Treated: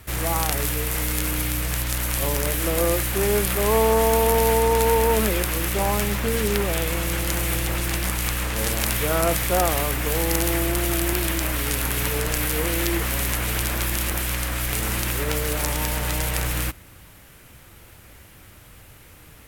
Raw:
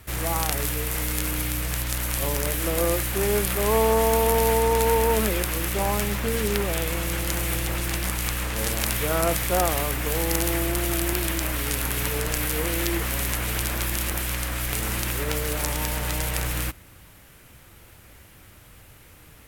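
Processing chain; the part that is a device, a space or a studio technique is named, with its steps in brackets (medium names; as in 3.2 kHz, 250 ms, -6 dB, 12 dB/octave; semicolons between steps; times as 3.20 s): parallel distortion (in parallel at -10.5 dB: hard clipper -19 dBFS, distortion -13 dB)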